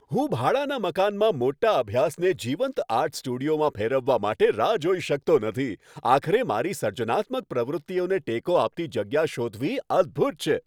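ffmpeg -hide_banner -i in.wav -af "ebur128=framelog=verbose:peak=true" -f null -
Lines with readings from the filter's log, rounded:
Integrated loudness:
  I:         -24.9 LUFS
  Threshold: -34.9 LUFS
Loudness range:
  LRA:         2.2 LU
  Threshold: -45.0 LUFS
  LRA low:   -26.2 LUFS
  LRA high:  -24.0 LUFS
True peak:
  Peak:       -5.2 dBFS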